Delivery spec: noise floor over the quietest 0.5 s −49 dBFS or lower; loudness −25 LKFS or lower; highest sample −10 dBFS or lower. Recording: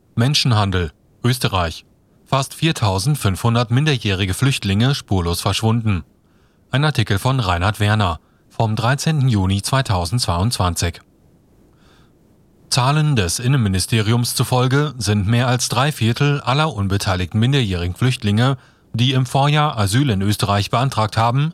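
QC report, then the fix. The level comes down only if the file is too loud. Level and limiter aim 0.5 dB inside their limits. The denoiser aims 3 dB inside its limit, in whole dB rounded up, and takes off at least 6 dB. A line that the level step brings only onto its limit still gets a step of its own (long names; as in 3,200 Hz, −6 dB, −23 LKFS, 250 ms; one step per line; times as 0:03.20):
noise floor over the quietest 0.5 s −55 dBFS: in spec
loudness −18.0 LKFS: out of spec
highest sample −3.5 dBFS: out of spec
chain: level −7.5 dB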